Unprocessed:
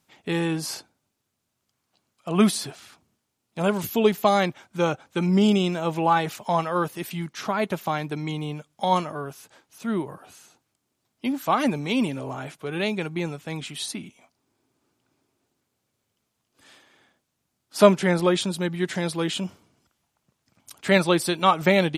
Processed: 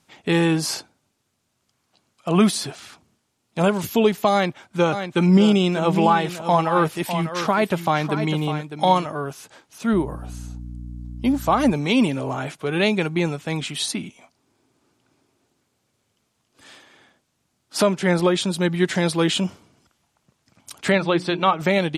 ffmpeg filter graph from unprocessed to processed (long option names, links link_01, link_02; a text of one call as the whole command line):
ffmpeg -i in.wav -filter_complex "[0:a]asettb=1/sr,asplit=3[link_01][link_02][link_03];[link_01]atrim=end=4.324[link_04];[link_02]atrim=start=4.32:end=9.06,asetpts=PTS-STARTPTS,afade=type=in:duration=0.004:curve=qsin,afade=type=out:start_time=4.736:duration=0.004:curve=qsin,equalizer=frequency=6300:width_type=o:width=0.36:gain=-3,aecho=1:1:602:0.299,atrim=end_sample=209034[link_05];[link_03]atrim=start=9.056[link_06];[link_04][link_05]acrossfade=duration=0.004:curve1=hsin:curve2=qsin[link_07];[link_07][link_06]acrossfade=duration=0.004:curve1=qsin:curve2=hsin,asettb=1/sr,asplit=3[link_08][link_09][link_10];[link_08]atrim=end=9.934[link_11];[link_09]atrim=start=9.93:end=11.73,asetpts=PTS-STARTPTS,afade=type=in:duration=0.004:curve=qsin,afade=type=out:start_time=1.796:duration=0.004:curve=qsin,aeval=exprs='val(0)+0.0112*(sin(2*PI*60*n/s)+sin(2*PI*2*60*n/s)/2+sin(2*PI*3*60*n/s)/3+sin(2*PI*4*60*n/s)/4+sin(2*PI*5*60*n/s)/5)':channel_layout=same,equalizer=frequency=2500:width=0.73:gain=-6[link_12];[link_10]atrim=start=11.726[link_13];[link_11][link_12]acrossfade=duration=0.004:curve1=hsin:curve2=qsin[link_14];[link_14][link_13]acrossfade=duration=0.004:curve1=qsin:curve2=hsin,asettb=1/sr,asplit=3[link_15][link_16][link_17];[link_15]atrim=end=20.924[link_18];[link_16]atrim=start=20.92:end=21.6,asetpts=PTS-STARTPTS,afade=type=in:duration=0.004:curve=qsin,afade=type=out:start_time=0.676:duration=0.004:curve=qsin,lowpass=3600,bandreject=frequency=60:width_type=h:width=6,bandreject=frequency=120:width_type=h:width=6,bandreject=frequency=180:width_type=h:width=6,bandreject=frequency=240:width_type=h:width=6,bandreject=frequency=300:width_type=h:width=6,bandreject=frequency=360:width_type=h:width=6[link_19];[link_17]atrim=start=21.596[link_20];[link_18][link_19]acrossfade=duration=0.004:curve1=hsin:curve2=qsin[link_21];[link_21][link_20]acrossfade=duration=0.004:curve1=qsin:curve2=hsin,lowpass=11000,alimiter=limit=-13dB:level=0:latency=1:release=466,volume=6.5dB" out.wav